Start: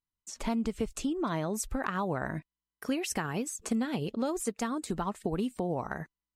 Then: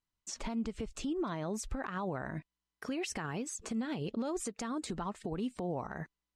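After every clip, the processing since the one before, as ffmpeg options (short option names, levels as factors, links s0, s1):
-filter_complex "[0:a]lowpass=6800,asplit=2[s0][s1];[s1]acompressor=threshold=0.0126:ratio=6,volume=1.06[s2];[s0][s2]amix=inputs=2:normalize=0,alimiter=level_in=1.19:limit=0.0631:level=0:latency=1:release=117,volume=0.841,volume=0.75"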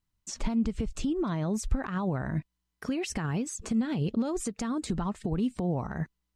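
-af "bass=f=250:g=10,treble=f=4000:g=1,volume=1.33"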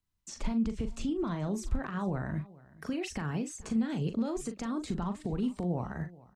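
-filter_complex "[0:a]acrossover=split=160|590|4100[s0][s1][s2][s3];[s3]alimiter=level_in=2.82:limit=0.0631:level=0:latency=1,volume=0.355[s4];[s0][s1][s2][s4]amix=inputs=4:normalize=0,asplit=2[s5][s6];[s6]adelay=40,volume=0.355[s7];[s5][s7]amix=inputs=2:normalize=0,aecho=1:1:427:0.0841,volume=0.668"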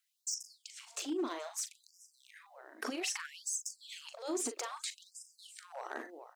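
-filter_complex "[0:a]acrossover=split=3800[s0][s1];[s0]acompressor=threshold=0.0112:ratio=20[s2];[s2][s1]amix=inputs=2:normalize=0,asoftclip=type=hard:threshold=0.0126,afftfilt=real='re*gte(b*sr/1024,240*pow(5000/240,0.5+0.5*sin(2*PI*0.62*pts/sr)))':imag='im*gte(b*sr/1024,240*pow(5000/240,0.5+0.5*sin(2*PI*0.62*pts/sr)))':win_size=1024:overlap=0.75,volume=2.82"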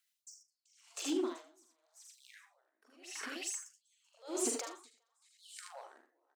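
-filter_complex "[0:a]asplit=2[s0][s1];[s1]aecho=0:1:46|75|86|384|469:0.316|0.596|0.335|0.376|0.168[s2];[s0][s2]amix=inputs=2:normalize=0,aeval=exprs='val(0)*pow(10,-33*(0.5-0.5*cos(2*PI*0.89*n/s))/20)':c=same,volume=1.12"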